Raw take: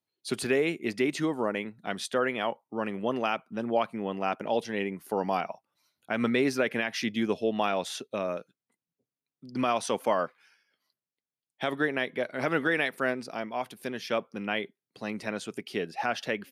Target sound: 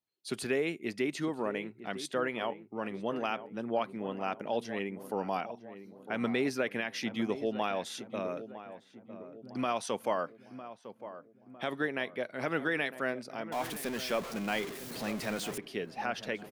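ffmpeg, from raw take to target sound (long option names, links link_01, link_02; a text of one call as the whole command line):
ffmpeg -i in.wav -filter_complex "[0:a]asettb=1/sr,asplit=3[link_01][link_02][link_03];[link_01]atrim=end=13.524[link_04];[link_02]atrim=start=13.52:end=15.58,asetpts=PTS-STARTPTS,afade=type=in:duration=0.004:curve=qsin,afade=type=out:start_time=2.056:duration=0.004:curve=qsin,aeval=exprs='val(0)+0.5*0.0282*sgn(val(0))':channel_layout=same[link_05];[link_03]atrim=start=15.576[link_06];[link_04][link_05]acrossfade=duration=0.004:curve1=hsin:curve2=qsin[link_07];[link_07][link_06]acrossfade=duration=0.004:curve1=qsin:curve2=hsin,asplit=2[link_08][link_09];[link_09]adelay=955,lowpass=frequency=1200:poles=1,volume=-12dB,asplit=2[link_10][link_11];[link_11]adelay=955,lowpass=frequency=1200:poles=1,volume=0.53,asplit=2[link_12][link_13];[link_13]adelay=955,lowpass=frequency=1200:poles=1,volume=0.53,asplit=2[link_14][link_15];[link_15]adelay=955,lowpass=frequency=1200:poles=1,volume=0.53,asplit=2[link_16][link_17];[link_17]adelay=955,lowpass=frequency=1200:poles=1,volume=0.53,asplit=2[link_18][link_19];[link_19]adelay=955,lowpass=frequency=1200:poles=1,volume=0.53[link_20];[link_08][link_10][link_12][link_14][link_16][link_18][link_20]amix=inputs=7:normalize=0,volume=-5dB" out.wav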